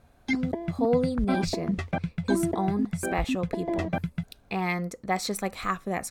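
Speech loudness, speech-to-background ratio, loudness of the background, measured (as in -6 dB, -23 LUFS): -30.0 LUFS, 0.5 dB, -30.5 LUFS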